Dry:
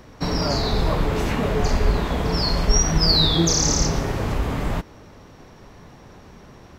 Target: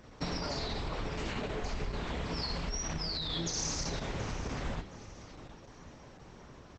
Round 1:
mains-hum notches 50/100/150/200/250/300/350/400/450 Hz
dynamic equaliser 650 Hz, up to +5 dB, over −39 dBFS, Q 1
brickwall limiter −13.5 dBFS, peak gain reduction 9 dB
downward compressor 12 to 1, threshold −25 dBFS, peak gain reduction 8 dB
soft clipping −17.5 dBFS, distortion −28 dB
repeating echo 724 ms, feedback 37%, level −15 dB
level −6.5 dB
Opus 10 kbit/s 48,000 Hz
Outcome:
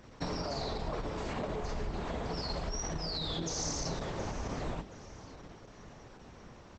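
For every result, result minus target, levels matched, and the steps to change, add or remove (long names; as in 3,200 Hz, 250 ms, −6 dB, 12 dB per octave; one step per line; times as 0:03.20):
soft clipping: distortion +21 dB; 2,000 Hz band −2.5 dB
change: soft clipping −6.5 dBFS, distortion −48 dB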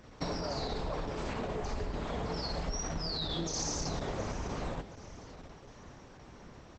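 2,000 Hz band −2.5 dB
change: dynamic equaliser 2,600 Hz, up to +5 dB, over −39 dBFS, Q 1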